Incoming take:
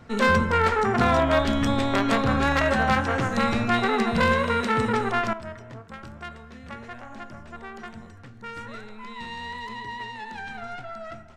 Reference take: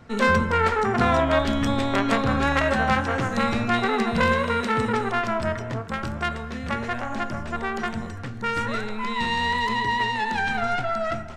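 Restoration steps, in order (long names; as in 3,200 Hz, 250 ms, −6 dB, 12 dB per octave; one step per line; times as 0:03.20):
clipped peaks rebuilt −11.5 dBFS
level 0 dB, from 0:05.33 +11.5 dB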